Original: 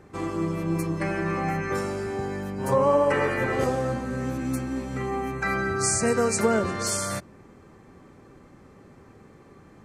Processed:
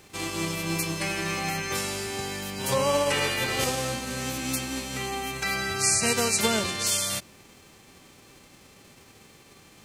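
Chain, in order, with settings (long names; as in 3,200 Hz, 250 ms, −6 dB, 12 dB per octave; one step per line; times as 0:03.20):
spectral envelope flattened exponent 0.6
high shelf with overshoot 2,100 Hz +6 dB, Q 1.5
level −3.5 dB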